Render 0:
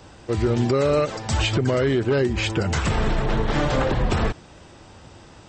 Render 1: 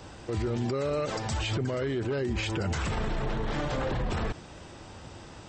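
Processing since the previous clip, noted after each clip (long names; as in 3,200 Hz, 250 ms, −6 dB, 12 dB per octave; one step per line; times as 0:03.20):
brickwall limiter −22.5 dBFS, peak gain reduction 11.5 dB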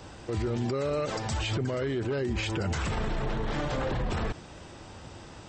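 no processing that can be heard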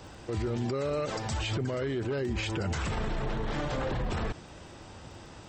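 surface crackle 18 per second −48 dBFS
level −1.5 dB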